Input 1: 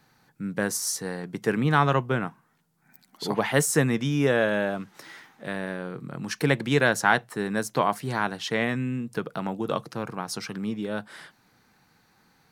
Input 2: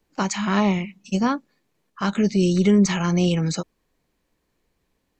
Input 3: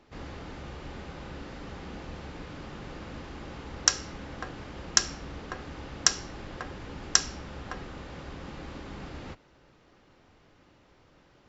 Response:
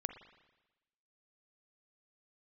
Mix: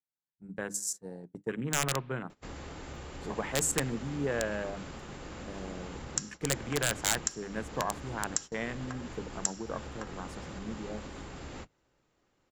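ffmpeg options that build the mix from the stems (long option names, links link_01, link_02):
-filter_complex "[0:a]afwtdn=0.0282,aeval=exprs='(mod(3.16*val(0)+1,2)-1)/3.16':channel_layout=same,volume=-11dB,asplit=2[link_01][link_02];[link_02]volume=-13dB[link_03];[2:a]acompressor=threshold=-43dB:ratio=2,adelay=2300,volume=3dB,asplit=2[link_04][link_05];[link_05]volume=-13.5dB[link_06];[link_04]acompressor=threshold=-42dB:ratio=3,volume=0dB[link_07];[3:a]atrim=start_sample=2205[link_08];[link_03][link_06]amix=inputs=2:normalize=0[link_09];[link_09][link_08]afir=irnorm=-1:irlink=0[link_10];[link_01][link_07][link_10]amix=inputs=3:normalize=0,bandreject=frequency=50:width_type=h:width=6,bandreject=frequency=100:width_type=h:width=6,bandreject=frequency=150:width_type=h:width=6,bandreject=frequency=200:width_type=h:width=6,bandreject=frequency=250:width_type=h:width=6,bandreject=frequency=300:width_type=h:width=6,agate=range=-18dB:threshold=-44dB:ratio=16:detection=peak,equalizer=frequency=7400:width_type=o:width=0.4:gain=13"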